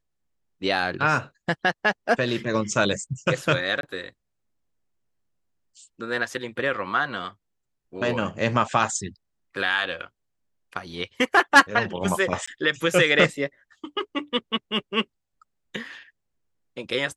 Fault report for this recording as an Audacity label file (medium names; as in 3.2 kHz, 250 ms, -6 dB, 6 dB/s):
3.810000	3.830000	dropout 22 ms
12.460000	12.470000	dropout 15 ms